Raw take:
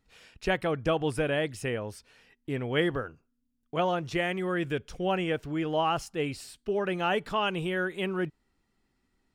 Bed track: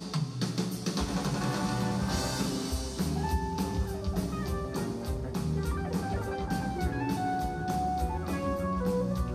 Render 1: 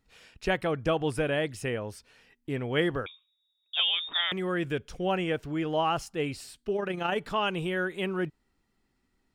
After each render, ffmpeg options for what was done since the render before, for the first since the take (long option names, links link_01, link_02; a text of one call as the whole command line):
ffmpeg -i in.wav -filter_complex "[0:a]asettb=1/sr,asplit=3[link_01][link_02][link_03];[link_01]atrim=end=3.064[link_04];[link_02]atrim=start=3.06:end=4.32,asetpts=PTS-STARTPTS,afade=type=in:duration=0.004:curve=qsin,afade=type=out:start_time=1.256:duration=0.004:curve=qsin,lowpass=frequency=3200:width_type=q:width=0.5098,lowpass=frequency=3200:width_type=q:width=0.6013,lowpass=frequency=3200:width_type=q:width=0.9,lowpass=frequency=3200:width_type=q:width=2.563,afreqshift=-3800[link_05];[link_03]atrim=start=4.316[link_06];[link_04][link_05]acrossfade=duration=0.004:curve1=hsin:curve2=qsin[link_07];[link_07][link_06]acrossfade=duration=0.004:curve1=qsin:curve2=hsin,asettb=1/sr,asplit=3[link_08][link_09][link_10];[link_08]atrim=end=6.764[link_11];[link_09]atrim=start=6.76:end=7.18,asetpts=PTS-STARTPTS,afade=type=in:duration=0.004:curve=qsin,afade=type=out:start_time=0.416:duration=0.004:curve=qsin,tremolo=f=27:d=0.462[link_12];[link_10]atrim=start=7.176[link_13];[link_11][link_12]acrossfade=duration=0.004:curve1=hsin:curve2=qsin[link_14];[link_14][link_13]acrossfade=duration=0.004:curve1=qsin:curve2=hsin" out.wav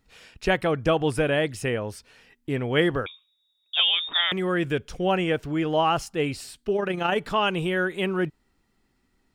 ffmpeg -i in.wav -af "volume=5dB" out.wav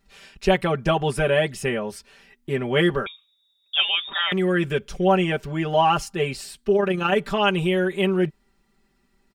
ffmpeg -i in.wav -af "aecho=1:1:5.1:0.95" out.wav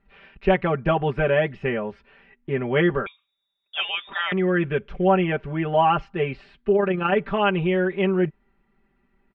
ffmpeg -i in.wav -af "lowpass=frequency=2600:width=0.5412,lowpass=frequency=2600:width=1.3066" out.wav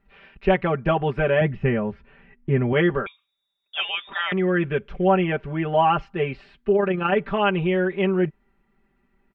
ffmpeg -i in.wav -filter_complex "[0:a]asettb=1/sr,asplit=3[link_01][link_02][link_03];[link_01]atrim=end=1.414[link_04];[link_02]atrim=start=1.41:end=2.73,asetpts=PTS-STARTPTS,afade=type=in:duration=0.004:curve=qsin,afade=type=out:start_time=1.316:duration=0.004:curve=qsin,bass=frequency=250:gain=10,treble=frequency=4000:gain=-12[link_05];[link_03]atrim=start=2.726[link_06];[link_04][link_05]acrossfade=duration=0.004:curve1=hsin:curve2=qsin[link_07];[link_07][link_06]acrossfade=duration=0.004:curve1=qsin:curve2=hsin" out.wav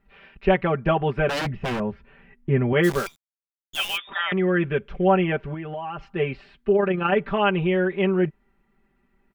ffmpeg -i in.wav -filter_complex "[0:a]asettb=1/sr,asplit=3[link_01][link_02][link_03];[link_01]atrim=end=1.294[link_04];[link_02]atrim=start=1.29:end=1.8,asetpts=PTS-STARTPTS,afade=type=in:duration=0.004:curve=qsin,afade=type=out:start_time=0.506:duration=0.004:curve=qsin,aeval=exprs='0.0891*(abs(mod(val(0)/0.0891+3,4)-2)-1)':channel_layout=same[link_05];[link_03]atrim=start=1.796[link_06];[link_04][link_05]acrossfade=duration=0.004:curve1=hsin:curve2=qsin[link_07];[link_07][link_06]acrossfade=duration=0.004:curve1=qsin:curve2=hsin,asplit=3[link_08][link_09][link_10];[link_08]afade=type=out:start_time=2.83:duration=0.02[link_11];[link_09]acrusher=bits=6:dc=4:mix=0:aa=0.000001,afade=type=in:start_time=2.83:duration=0.02,afade=type=out:start_time=3.96:duration=0.02[link_12];[link_10]afade=type=in:start_time=3.96:duration=0.02[link_13];[link_11][link_12][link_13]amix=inputs=3:normalize=0,asettb=1/sr,asplit=3[link_14][link_15][link_16];[link_14]atrim=end=5.544[link_17];[link_15]atrim=start=5.54:end=6.11,asetpts=PTS-STARTPTS,afade=type=in:duration=0.004:curve=qsin,afade=type=out:start_time=0.566:duration=0.004:curve=qsin,acompressor=threshold=-30dB:ratio=5:attack=3.2:release=140:knee=1:detection=peak[link_18];[link_16]atrim=start=6.106[link_19];[link_17][link_18]acrossfade=duration=0.004:curve1=hsin:curve2=qsin[link_20];[link_20][link_19]acrossfade=duration=0.004:curve1=qsin:curve2=hsin" out.wav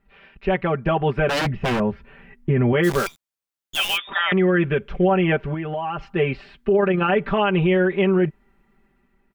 ffmpeg -i in.wav -af "dynaudnorm=framelen=670:gausssize=3:maxgain=7dB,alimiter=limit=-10.5dB:level=0:latency=1:release=61" out.wav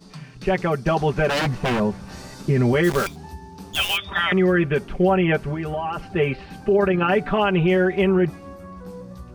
ffmpeg -i in.wav -i bed.wav -filter_complex "[1:a]volume=-8dB[link_01];[0:a][link_01]amix=inputs=2:normalize=0" out.wav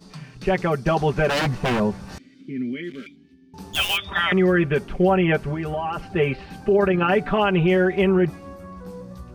ffmpeg -i in.wav -filter_complex "[0:a]asettb=1/sr,asplit=3[link_01][link_02][link_03];[link_01]atrim=end=2.184[link_04];[link_02]atrim=start=2.18:end=3.54,asetpts=PTS-STARTPTS,afade=type=in:duration=0.004:curve=qsin,afade=type=out:start_time=1.356:duration=0.004:curve=qsin,asplit=3[link_05][link_06][link_07];[link_05]bandpass=frequency=270:width_type=q:width=8,volume=0dB[link_08];[link_06]bandpass=frequency=2290:width_type=q:width=8,volume=-6dB[link_09];[link_07]bandpass=frequency=3010:width_type=q:width=8,volume=-9dB[link_10];[link_08][link_09][link_10]amix=inputs=3:normalize=0[link_11];[link_03]atrim=start=3.536[link_12];[link_04][link_11]acrossfade=duration=0.004:curve1=hsin:curve2=qsin[link_13];[link_13][link_12]acrossfade=duration=0.004:curve1=qsin:curve2=hsin" out.wav